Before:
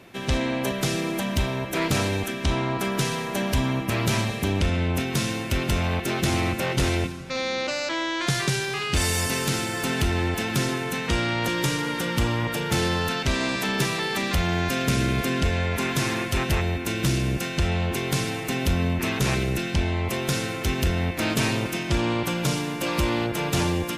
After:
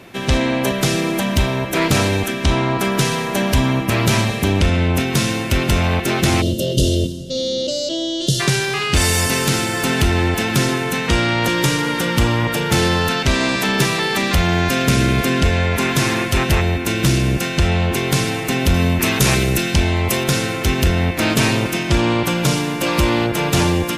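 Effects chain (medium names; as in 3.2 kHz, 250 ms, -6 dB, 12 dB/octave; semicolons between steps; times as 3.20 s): 6.41–8.40 s: time-frequency box 680–2700 Hz -27 dB; 18.74–20.24 s: treble shelf 5.3 kHz +8.5 dB; trim +7.5 dB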